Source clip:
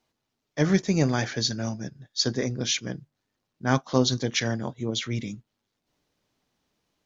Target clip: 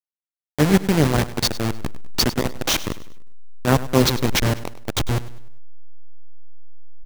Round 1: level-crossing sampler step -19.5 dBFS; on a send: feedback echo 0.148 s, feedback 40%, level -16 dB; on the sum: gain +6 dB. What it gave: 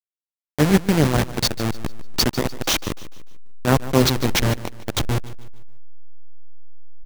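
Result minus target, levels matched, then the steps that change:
echo 48 ms late
change: feedback echo 0.1 s, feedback 40%, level -16 dB

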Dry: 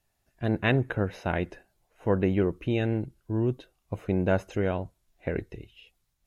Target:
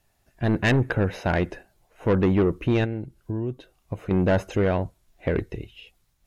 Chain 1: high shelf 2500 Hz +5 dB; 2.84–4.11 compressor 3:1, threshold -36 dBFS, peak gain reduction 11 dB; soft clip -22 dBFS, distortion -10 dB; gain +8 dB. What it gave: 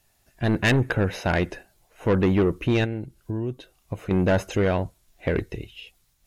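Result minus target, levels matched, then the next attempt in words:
4000 Hz band +3.5 dB
high shelf 2500 Hz -2 dB; 2.84–4.11 compressor 3:1, threshold -36 dBFS, peak gain reduction 11 dB; soft clip -22 dBFS, distortion -11 dB; gain +8 dB

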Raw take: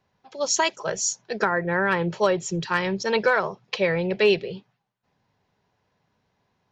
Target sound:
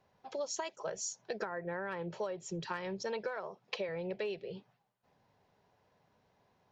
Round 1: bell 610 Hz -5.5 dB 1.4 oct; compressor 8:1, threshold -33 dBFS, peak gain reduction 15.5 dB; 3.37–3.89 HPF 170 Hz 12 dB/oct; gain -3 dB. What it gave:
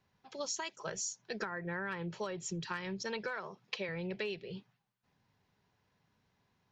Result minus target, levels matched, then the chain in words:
500 Hz band -3.5 dB
bell 610 Hz +6 dB 1.4 oct; compressor 8:1, threshold -33 dBFS, peak gain reduction 21.5 dB; 3.37–3.89 HPF 170 Hz 12 dB/oct; gain -3 dB

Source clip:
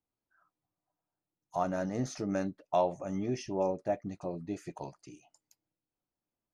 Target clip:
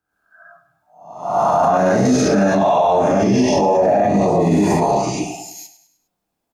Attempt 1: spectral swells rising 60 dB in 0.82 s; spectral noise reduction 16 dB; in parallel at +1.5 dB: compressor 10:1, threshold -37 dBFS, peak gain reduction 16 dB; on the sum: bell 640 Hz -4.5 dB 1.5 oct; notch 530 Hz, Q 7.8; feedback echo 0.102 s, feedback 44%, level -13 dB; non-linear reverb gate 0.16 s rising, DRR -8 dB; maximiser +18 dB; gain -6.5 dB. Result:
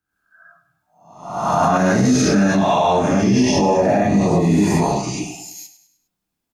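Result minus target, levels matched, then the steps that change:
500 Hz band -2.5 dB
change: bell 640 Hz +6 dB 1.5 oct

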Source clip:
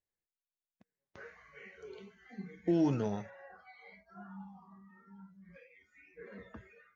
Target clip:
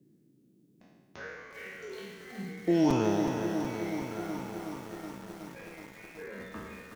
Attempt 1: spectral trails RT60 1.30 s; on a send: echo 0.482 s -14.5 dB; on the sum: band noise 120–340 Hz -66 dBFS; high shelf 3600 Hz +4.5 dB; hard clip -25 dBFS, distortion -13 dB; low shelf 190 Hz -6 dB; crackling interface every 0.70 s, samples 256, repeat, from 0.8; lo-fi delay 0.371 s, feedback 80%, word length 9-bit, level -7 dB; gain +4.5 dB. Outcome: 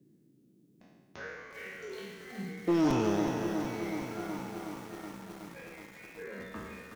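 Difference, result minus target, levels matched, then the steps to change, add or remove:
hard clip: distortion +20 dB
change: hard clip -19 dBFS, distortion -34 dB

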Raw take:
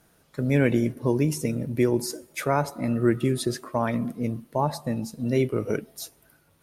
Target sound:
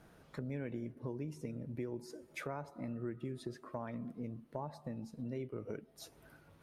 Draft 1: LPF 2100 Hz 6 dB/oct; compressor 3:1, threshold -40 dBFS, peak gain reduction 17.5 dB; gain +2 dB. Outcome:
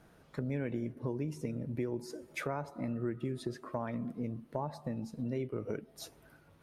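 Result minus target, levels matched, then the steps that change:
compressor: peak gain reduction -5.5 dB
change: compressor 3:1, threshold -48 dBFS, peak gain reduction 23 dB

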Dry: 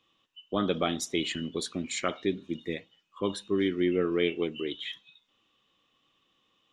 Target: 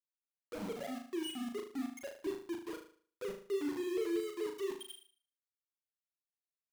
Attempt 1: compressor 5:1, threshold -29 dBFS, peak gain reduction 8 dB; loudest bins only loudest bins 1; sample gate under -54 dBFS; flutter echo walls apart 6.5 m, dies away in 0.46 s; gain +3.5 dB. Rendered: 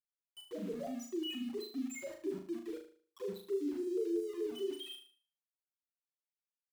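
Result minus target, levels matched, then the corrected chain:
sample gate: distortion -10 dB
compressor 5:1, threshold -29 dBFS, peak gain reduction 8 dB; loudest bins only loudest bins 1; sample gate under -45.5 dBFS; flutter echo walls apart 6.5 m, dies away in 0.46 s; gain +3.5 dB

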